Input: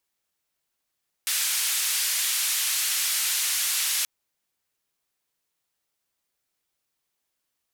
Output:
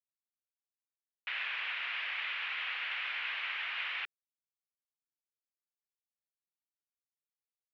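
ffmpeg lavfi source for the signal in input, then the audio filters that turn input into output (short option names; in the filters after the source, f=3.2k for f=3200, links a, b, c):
-f lavfi -i "anoisesrc=c=white:d=2.78:r=44100:seed=1,highpass=f=1900,lowpass=f=13000,volume=-17.6dB"
-af "aresample=16000,aeval=exprs='sgn(val(0))*max(abs(val(0))-0.00224,0)':c=same,aresample=44100,highpass=f=230:t=q:w=0.5412,highpass=f=230:t=q:w=1.307,lowpass=f=2.6k:t=q:w=0.5176,lowpass=f=2.6k:t=q:w=0.7071,lowpass=f=2.6k:t=q:w=1.932,afreqshift=140"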